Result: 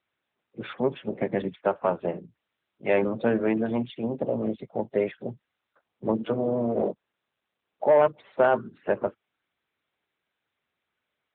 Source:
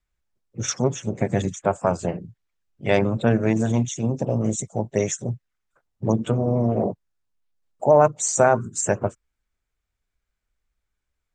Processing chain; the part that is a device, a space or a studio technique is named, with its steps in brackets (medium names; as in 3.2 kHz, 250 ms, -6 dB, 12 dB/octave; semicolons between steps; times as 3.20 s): dynamic bell 710 Hz, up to -6 dB, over -36 dBFS, Q 7.1; 6.85–7.86 s: high-pass 170 Hz 12 dB/octave; telephone (band-pass 260–3300 Hz; saturation -10 dBFS, distortion -17 dB; AMR-NB 12.2 kbps 8 kHz)